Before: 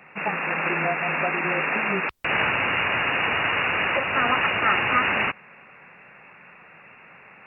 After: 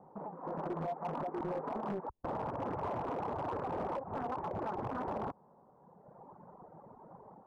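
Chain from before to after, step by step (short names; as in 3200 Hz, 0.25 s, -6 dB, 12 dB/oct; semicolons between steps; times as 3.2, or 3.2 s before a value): reverb removal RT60 1.6 s; elliptic low-pass 940 Hz, stop band 70 dB; compressor 20:1, threshold -36 dBFS, peak gain reduction 14.5 dB; limiter -32.5 dBFS, peak gain reduction 6 dB; AGC gain up to 7 dB; hard clip -29 dBFS, distortion -20 dB; Doppler distortion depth 0.57 ms; gain -2.5 dB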